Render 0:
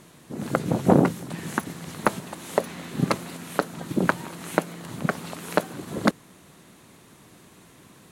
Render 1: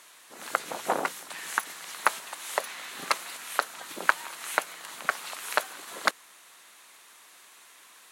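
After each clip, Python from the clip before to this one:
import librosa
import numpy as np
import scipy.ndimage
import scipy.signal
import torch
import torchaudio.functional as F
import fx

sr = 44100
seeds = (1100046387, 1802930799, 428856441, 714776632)

y = scipy.signal.sosfilt(scipy.signal.butter(2, 1100.0, 'highpass', fs=sr, output='sos'), x)
y = F.gain(torch.from_numpy(y), 3.0).numpy()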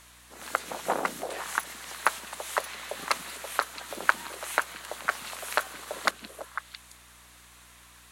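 y = fx.echo_stepped(x, sr, ms=167, hz=190.0, octaves=1.4, feedback_pct=70, wet_db=-1)
y = fx.add_hum(y, sr, base_hz=60, snr_db=27)
y = F.gain(torch.from_numpy(y), -1.0).numpy()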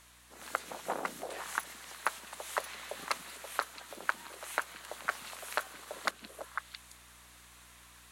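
y = fx.rider(x, sr, range_db=4, speed_s=0.5)
y = F.gain(torch.from_numpy(y), -7.0).numpy()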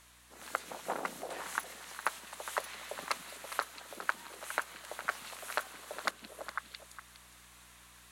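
y = x + 10.0 ** (-12.0 / 20.0) * np.pad(x, (int(411 * sr / 1000.0), 0))[:len(x)]
y = F.gain(torch.from_numpy(y), -1.0).numpy()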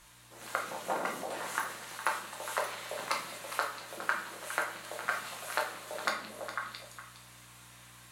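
y = fx.room_shoebox(x, sr, seeds[0], volume_m3=100.0, walls='mixed', distance_m=0.88)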